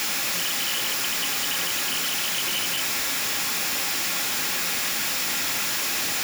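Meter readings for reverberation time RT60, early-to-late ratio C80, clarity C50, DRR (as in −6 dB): 0.40 s, 21.5 dB, 17.0 dB, 7.0 dB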